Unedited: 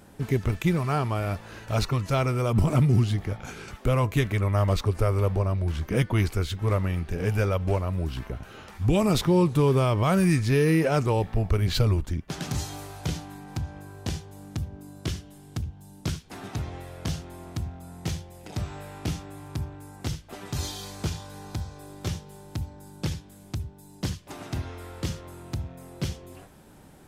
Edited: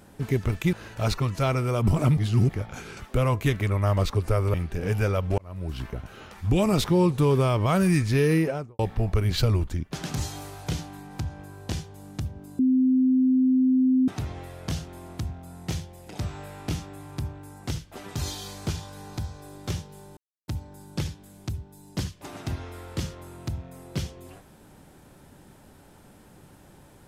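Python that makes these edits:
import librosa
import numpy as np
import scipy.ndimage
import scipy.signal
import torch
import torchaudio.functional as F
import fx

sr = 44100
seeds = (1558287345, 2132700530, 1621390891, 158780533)

y = fx.studio_fade_out(x, sr, start_s=10.68, length_s=0.48)
y = fx.edit(y, sr, fx.cut(start_s=0.73, length_s=0.71),
    fx.reverse_span(start_s=2.88, length_s=0.32),
    fx.cut(start_s=5.25, length_s=1.66),
    fx.fade_in_span(start_s=7.75, length_s=0.42),
    fx.bleep(start_s=14.96, length_s=1.49, hz=258.0, db=-17.0),
    fx.insert_silence(at_s=22.54, length_s=0.31), tone=tone)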